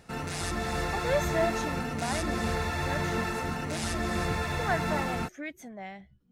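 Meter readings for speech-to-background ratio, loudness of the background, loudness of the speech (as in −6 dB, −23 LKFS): −4.5 dB, −31.5 LKFS, −36.0 LKFS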